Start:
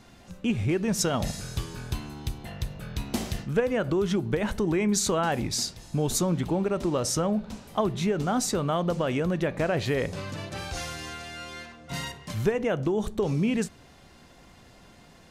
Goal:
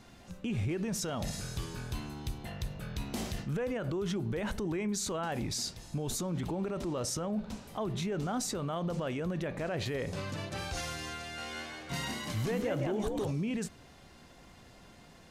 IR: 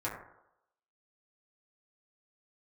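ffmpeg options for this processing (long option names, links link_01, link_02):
-filter_complex "[0:a]alimiter=limit=-24dB:level=0:latency=1:release=22,asettb=1/sr,asplit=3[link_01][link_02][link_03];[link_01]atrim=end=11.214[link_04];[link_02]atrim=start=11.21:end=13.31,asetpts=PTS-STARTPTS,afade=type=in:duration=0.004:curve=qsin,afade=type=out:start_time=2.096:duration=0.004:curve=qsin,asplit=6[link_05][link_06][link_07][link_08][link_09][link_10];[link_06]adelay=168,afreqshift=79,volume=-3.5dB[link_11];[link_07]adelay=336,afreqshift=158,volume=-11.5dB[link_12];[link_08]adelay=504,afreqshift=237,volume=-19.4dB[link_13];[link_09]adelay=672,afreqshift=316,volume=-27.4dB[link_14];[link_10]adelay=840,afreqshift=395,volume=-35.3dB[link_15];[link_05][link_11][link_12][link_13][link_14][link_15]amix=inputs=6:normalize=0,atrim=end_sample=92610[link_16];[link_03]atrim=start=13.306[link_17];[link_04][link_16]acrossfade=duration=0.004:curve1=hsin:curve2=qsin[link_18];[link_18][link_17]acrossfade=duration=0.004:curve1=qsin:curve2=hsin,volume=-2.5dB"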